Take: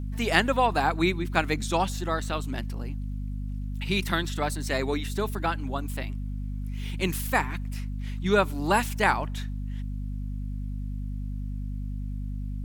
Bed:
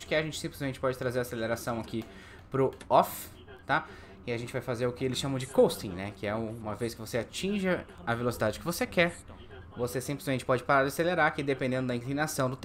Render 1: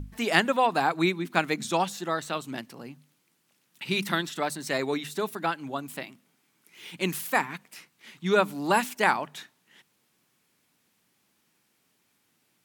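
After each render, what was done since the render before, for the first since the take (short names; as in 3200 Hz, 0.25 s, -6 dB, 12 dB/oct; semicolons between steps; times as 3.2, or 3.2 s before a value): notches 50/100/150/200/250 Hz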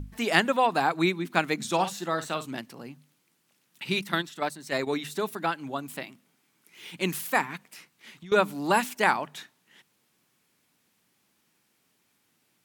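1.67–2.46 doubler 50 ms -11.5 dB; 3.99–4.87 gate -30 dBFS, range -7 dB; 7.67–8.32 compressor 10:1, threshold -41 dBFS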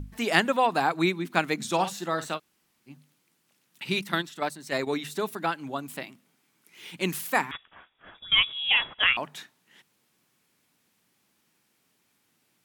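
2.37–2.89 room tone, crossfade 0.06 s; 7.51–9.17 inverted band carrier 3600 Hz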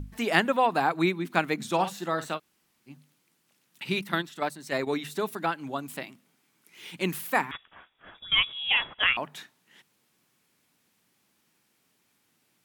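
dynamic EQ 6500 Hz, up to -6 dB, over -43 dBFS, Q 0.72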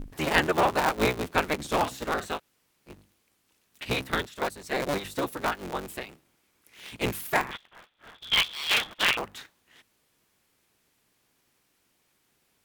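cycle switcher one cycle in 3, inverted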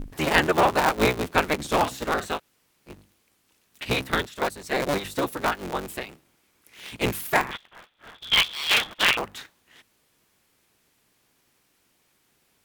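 gain +3.5 dB; limiter -2 dBFS, peak gain reduction 1 dB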